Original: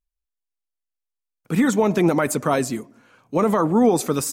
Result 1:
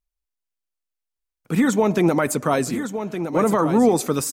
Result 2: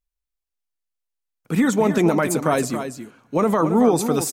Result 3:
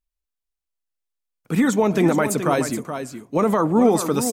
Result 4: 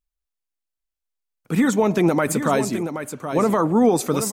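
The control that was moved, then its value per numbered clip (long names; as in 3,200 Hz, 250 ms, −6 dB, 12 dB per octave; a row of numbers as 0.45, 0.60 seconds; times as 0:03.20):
single-tap delay, delay time: 1,164, 275, 424, 775 milliseconds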